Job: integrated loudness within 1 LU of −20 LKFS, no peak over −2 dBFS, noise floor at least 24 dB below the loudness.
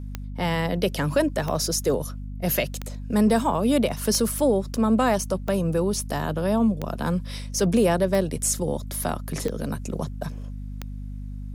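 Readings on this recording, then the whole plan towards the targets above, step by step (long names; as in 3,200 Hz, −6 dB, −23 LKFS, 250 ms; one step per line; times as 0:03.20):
number of clicks 9; mains hum 50 Hz; hum harmonics up to 250 Hz; level of the hum −31 dBFS; integrated loudness −24.5 LKFS; sample peak −8.5 dBFS; target loudness −20.0 LKFS
→ click removal
hum removal 50 Hz, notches 5
level +4.5 dB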